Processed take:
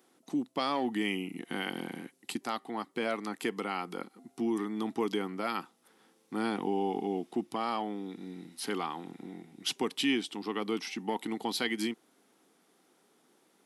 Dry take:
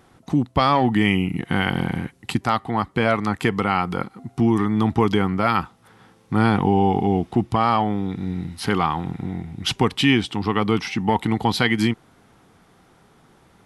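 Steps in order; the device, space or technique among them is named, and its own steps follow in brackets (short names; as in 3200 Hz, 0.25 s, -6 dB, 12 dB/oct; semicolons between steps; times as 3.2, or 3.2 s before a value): HPF 270 Hz 24 dB/oct; smiley-face EQ (low shelf 140 Hz +6 dB; bell 1100 Hz -7.5 dB 2.6 oct; high shelf 8900 Hz +7 dB); gain -7.5 dB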